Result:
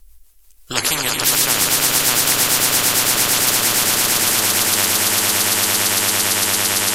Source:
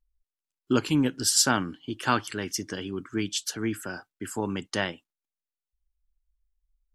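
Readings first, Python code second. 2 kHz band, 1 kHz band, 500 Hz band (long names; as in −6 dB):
+14.0 dB, +10.0 dB, +7.0 dB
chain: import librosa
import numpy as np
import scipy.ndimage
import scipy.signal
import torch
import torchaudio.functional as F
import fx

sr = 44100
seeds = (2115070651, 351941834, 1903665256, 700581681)

p1 = fx.peak_eq(x, sr, hz=13000.0, db=13.0, octaves=1.4)
p2 = fx.doubler(p1, sr, ms=12.0, db=-10.5)
p3 = fx.rotary(p2, sr, hz=6.0)
p4 = p3 + fx.echo_swell(p3, sr, ms=113, loudest=8, wet_db=-9.0, dry=0)
y = fx.spectral_comp(p4, sr, ratio=10.0)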